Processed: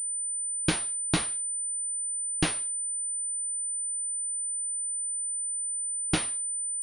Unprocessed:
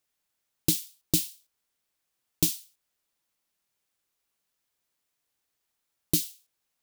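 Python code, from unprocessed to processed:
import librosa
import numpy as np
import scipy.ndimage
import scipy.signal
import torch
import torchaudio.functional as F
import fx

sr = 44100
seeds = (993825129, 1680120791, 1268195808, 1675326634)

y = fx.spec_erase(x, sr, start_s=5.43, length_s=0.8, low_hz=430.0, high_hz=2800.0)
y = fx.pwm(y, sr, carrier_hz=9000.0)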